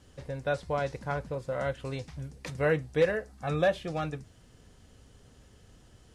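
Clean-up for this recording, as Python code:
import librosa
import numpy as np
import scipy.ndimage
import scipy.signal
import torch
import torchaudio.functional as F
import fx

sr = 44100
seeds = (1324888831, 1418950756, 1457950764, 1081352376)

y = fx.fix_declip(x, sr, threshold_db=-16.0)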